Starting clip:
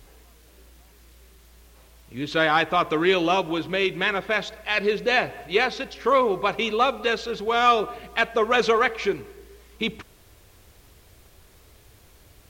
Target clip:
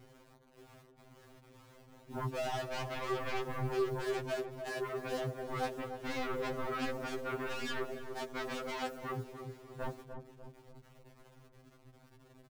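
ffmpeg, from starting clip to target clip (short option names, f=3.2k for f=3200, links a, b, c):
-filter_complex "[0:a]lowpass=f=2.4k:p=1,afwtdn=0.0447,equalizer=f=210:w=3.8:g=-5,acompressor=threshold=-33dB:ratio=10,alimiter=level_in=8dB:limit=-24dB:level=0:latency=1:release=19,volume=-8dB,adynamicsmooth=sensitivity=6:basefreq=540,acrusher=bits=10:mix=0:aa=0.000001,aeval=exprs='0.0251*sin(PI/2*2.82*val(0)/0.0251)':c=same,asplit=2[a][b];[b]adelay=297,lowpass=f=820:p=1,volume=-6dB,asplit=2[c][d];[d]adelay=297,lowpass=f=820:p=1,volume=0.55,asplit=2[e][f];[f]adelay=297,lowpass=f=820:p=1,volume=0.55,asplit=2[g][h];[h]adelay=297,lowpass=f=820:p=1,volume=0.55,asplit=2[i][j];[j]adelay=297,lowpass=f=820:p=1,volume=0.55,asplit=2[k][l];[l]adelay=297,lowpass=f=820:p=1,volume=0.55,asplit=2[m][n];[n]adelay=297,lowpass=f=820:p=1,volume=0.55[o];[c][e][g][i][k][m][o]amix=inputs=7:normalize=0[p];[a][p]amix=inputs=2:normalize=0,afftfilt=real='re*2.45*eq(mod(b,6),0)':imag='im*2.45*eq(mod(b,6),0)':win_size=2048:overlap=0.75"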